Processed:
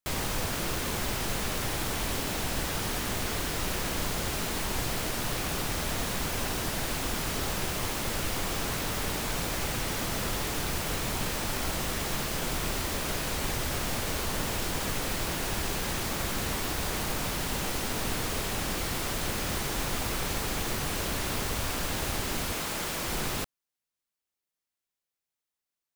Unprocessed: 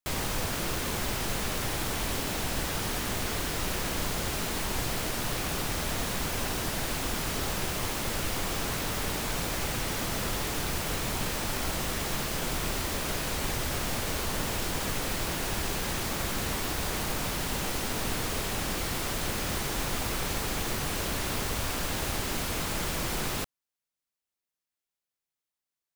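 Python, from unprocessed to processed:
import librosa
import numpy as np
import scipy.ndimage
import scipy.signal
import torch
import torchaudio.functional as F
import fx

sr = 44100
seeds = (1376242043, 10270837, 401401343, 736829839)

y = fx.low_shelf(x, sr, hz=140.0, db=-11.0, at=(22.53, 23.08))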